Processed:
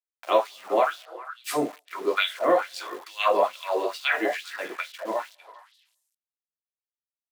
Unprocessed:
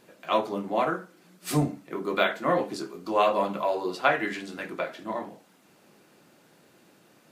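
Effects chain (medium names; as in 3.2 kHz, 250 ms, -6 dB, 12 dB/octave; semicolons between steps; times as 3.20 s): small samples zeroed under -40.5 dBFS; repeats whose band climbs or falls 200 ms, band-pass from 540 Hz, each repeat 1.4 oct, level -8 dB; LFO high-pass sine 2.3 Hz 380–3800 Hz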